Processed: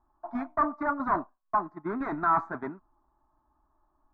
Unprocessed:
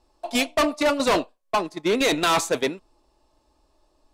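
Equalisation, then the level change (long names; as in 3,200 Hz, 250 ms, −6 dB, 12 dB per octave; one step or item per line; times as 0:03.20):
Chebyshev low-pass filter 1,400 Hz, order 3
low-shelf EQ 220 Hz −7 dB
phaser with its sweep stopped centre 1,200 Hz, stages 4
0.0 dB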